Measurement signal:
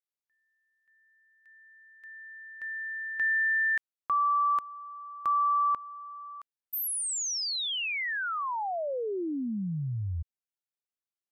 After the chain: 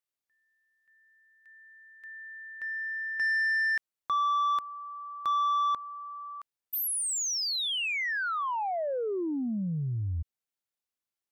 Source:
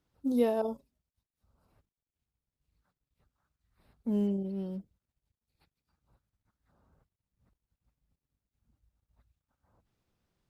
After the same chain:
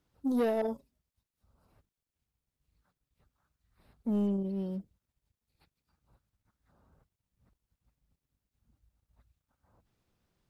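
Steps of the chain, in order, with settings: soft clip -25.5 dBFS; gain +2 dB

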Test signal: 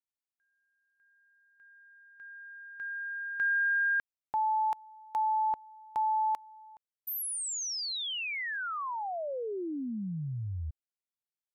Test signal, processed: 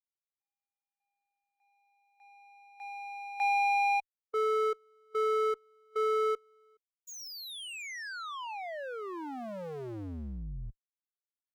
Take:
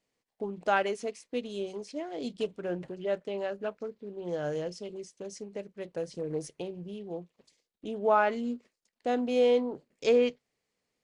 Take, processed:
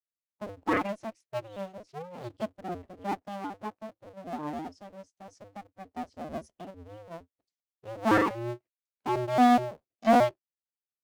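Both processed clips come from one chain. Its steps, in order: cycle switcher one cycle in 2, inverted; added harmonics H 2 -19 dB, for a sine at -12.5 dBFS; spectral expander 1.5:1

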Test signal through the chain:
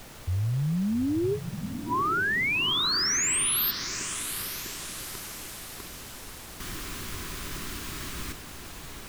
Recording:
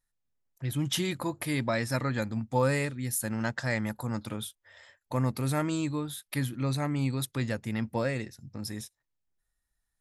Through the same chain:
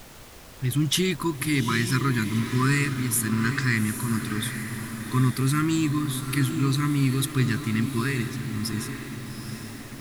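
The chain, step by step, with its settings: FFT band-reject 430–960 Hz; added noise pink -52 dBFS; diffused feedback echo 0.822 s, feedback 54%, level -8.5 dB; gain +6.5 dB

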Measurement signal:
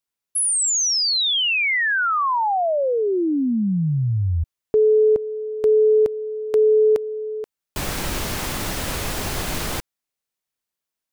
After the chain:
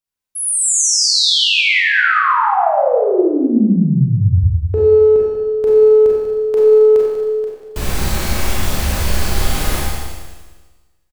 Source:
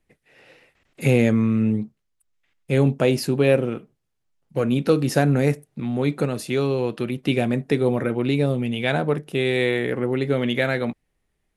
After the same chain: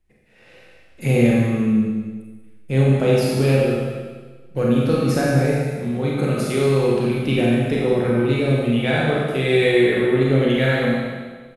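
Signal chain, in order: in parallel at -10 dB: one-sided clip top -17 dBFS, bottom -7 dBFS; on the sum: low shelf 100 Hz +11.5 dB; on a send: feedback echo 0.192 s, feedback 30%, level -10 dB; on the sum: AGC gain up to 5 dB; resonator 73 Hz, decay 0.79 s, harmonics odd, mix 70%; Schroeder reverb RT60 1.3 s, combs from 30 ms, DRR -4 dB; gain +2 dB

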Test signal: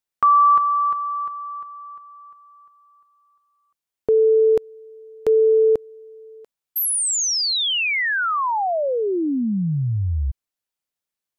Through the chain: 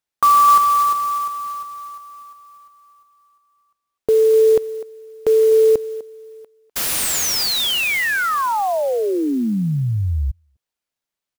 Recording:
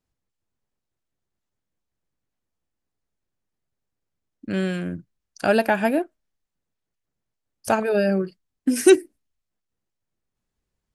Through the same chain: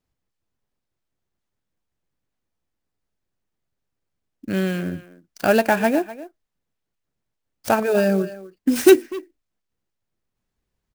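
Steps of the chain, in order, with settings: speakerphone echo 0.25 s, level -15 dB; clock jitter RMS 0.02 ms; gain +2 dB

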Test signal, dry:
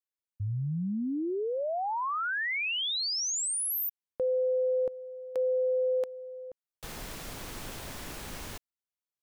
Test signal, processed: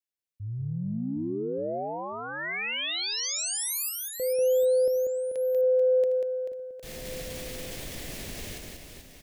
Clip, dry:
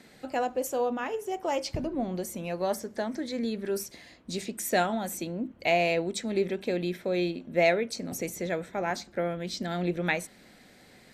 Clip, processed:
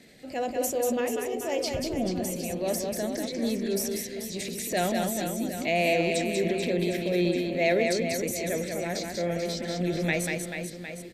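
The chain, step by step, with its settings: band shelf 1100 Hz -10 dB 1.1 oct; in parallel at -1 dB: level quantiser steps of 15 dB; on the sum: transient shaper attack -4 dB, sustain +7 dB; reverse bouncing-ball echo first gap 0.19 s, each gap 1.3×, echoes 5; gain -3 dB

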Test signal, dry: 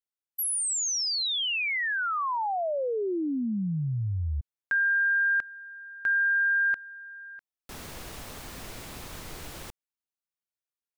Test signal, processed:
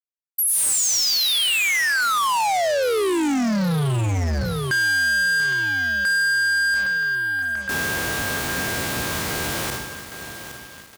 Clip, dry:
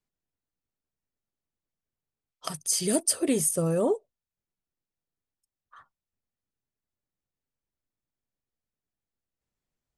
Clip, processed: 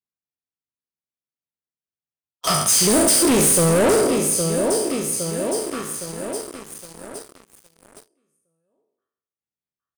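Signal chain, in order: spectral trails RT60 0.77 s; HPF 86 Hz 12 dB/oct; in parallel at -8 dB: hard clip -16.5 dBFS; on the sum: feedback echo 0.813 s, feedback 57%, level -12 dB; sample leveller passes 5; gain -6 dB

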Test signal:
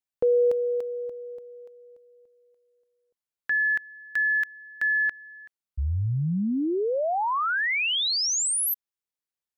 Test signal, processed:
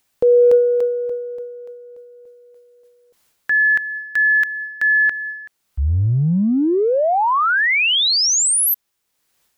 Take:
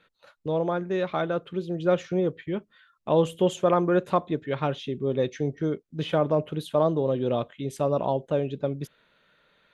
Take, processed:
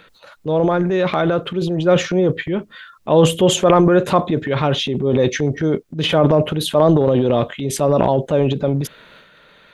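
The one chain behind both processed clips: transient shaper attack -2 dB, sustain +10 dB; upward compressor 1.5:1, threshold -43 dBFS; gain +9 dB

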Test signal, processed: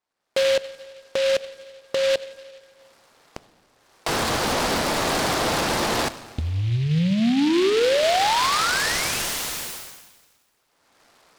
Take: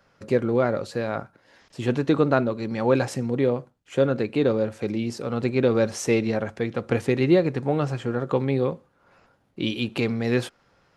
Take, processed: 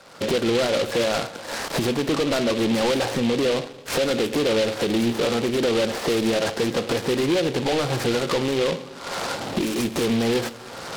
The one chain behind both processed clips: recorder AGC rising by 34 dB/s; LPF 3000 Hz 24 dB/oct; compressor 10:1, threshold -22 dBFS; overdrive pedal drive 33 dB, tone 1100 Hz, clips at -3 dBFS; plate-style reverb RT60 1.8 s, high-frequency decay 0.95×, DRR 13 dB; noise-modulated delay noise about 2800 Hz, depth 0.1 ms; gain -8.5 dB

